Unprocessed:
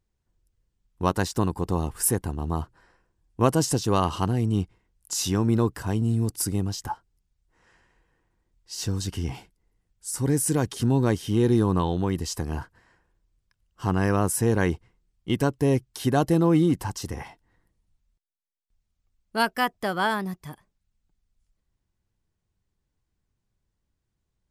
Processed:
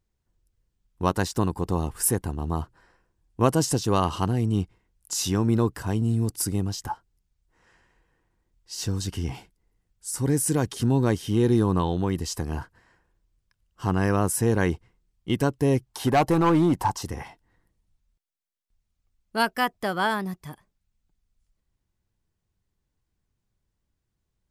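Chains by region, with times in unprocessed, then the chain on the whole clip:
15.86–17.03 s: peaking EQ 870 Hz +12.5 dB 0.97 oct + overload inside the chain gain 15 dB
whole clip: none

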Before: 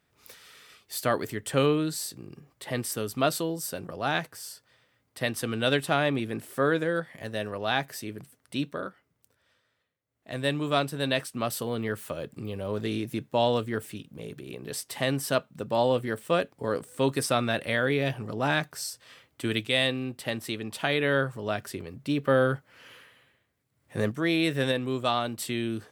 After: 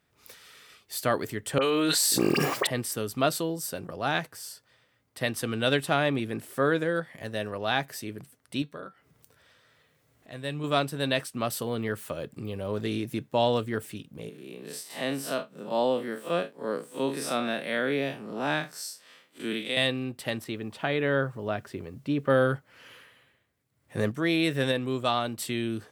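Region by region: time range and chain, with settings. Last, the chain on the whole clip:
1.58–2.67 s: Bessel high-pass 450 Hz + phase dispersion highs, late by 45 ms, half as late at 2 kHz + level flattener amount 100%
8.62–10.64 s: upward compressor, threshold -39 dBFS + feedback comb 150 Hz, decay 0.21 s, harmonics odd
14.29–19.77 s: spectral blur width 91 ms + steep high-pass 160 Hz
20.44–22.30 s: low-pass 1.9 kHz 6 dB/octave + word length cut 12-bit, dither triangular
whole clip: none

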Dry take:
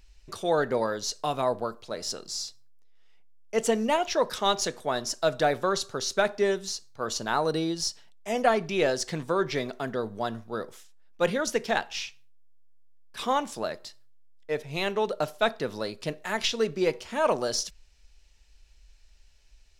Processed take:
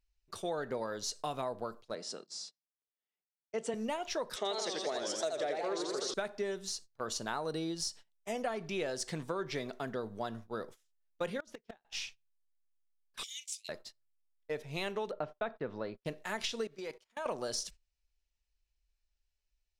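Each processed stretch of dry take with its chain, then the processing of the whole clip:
1.95–3.74 s: Chebyshev band-pass 160–9300 Hz, order 4 + treble shelf 4.3 kHz -7.5 dB
4.36–6.14 s: cabinet simulation 270–8800 Hz, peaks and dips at 400 Hz +8 dB, 630 Hz +5 dB, 970 Hz -5 dB, 1.4 kHz -4 dB, 2 kHz +7 dB, 3.8 kHz +3 dB + modulated delay 81 ms, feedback 65%, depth 202 cents, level -4 dB
11.40–11.85 s: treble shelf 7.9 kHz -12 dB + inverted gate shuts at -19 dBFS, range -26 dB + overload inside the chain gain 32.5 dB
13.23–13.69 s: steep high-pass 2.1 kHz 96 dB/octave + peaking EQ 6.5 kHz +8 dB 0.79 oct
15.11–16.05 s: low-pass 2.1 kHz + gate -44 dBFS, range -25 dB
16.67–17.26 s: level held to a coarse grid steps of 15 dB + bass shelf 400 Hz -10 dB + band-stop 2.7 kHz, Q 16
whole clip: gate -42 dBFS, range -19 dB; dynamic bell 8.8 kHz, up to +6 dB, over -53 dBFS, Q 3.1; compression, threshold -27 dBFS; trim -5.5 dB

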